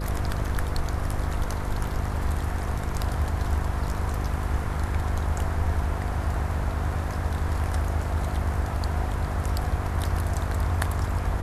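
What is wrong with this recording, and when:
buzz 50 Hz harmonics 10 -31 dBFS

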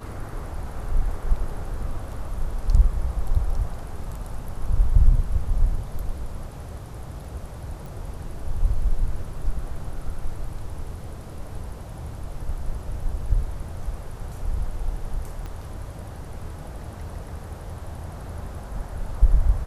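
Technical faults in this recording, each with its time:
7.86 s: pop
15.46 s: pop -23 dBFS

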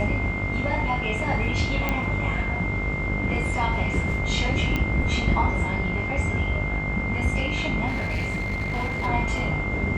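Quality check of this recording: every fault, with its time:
buzz 50 Hz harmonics 30 -30 dBFS
whine 2.1 kHz -29 dBFS
1.89 s: pop -10 dBFS
4.76 s: pop -12 dBFS
7.87–9.07 s: clipped -22.5 dBFS

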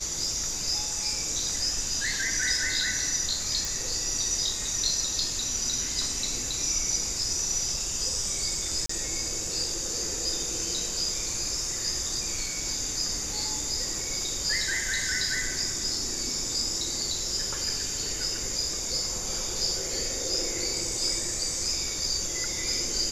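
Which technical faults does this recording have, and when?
3.65 s: pop
8.86–8.89 s: dropout 34 ms

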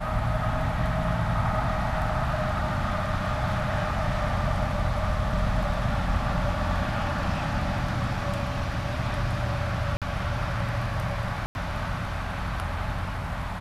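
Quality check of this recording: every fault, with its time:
9.97–10.02 s: dropout 47 ms
11.46–11.55 s: dropout 91 ms

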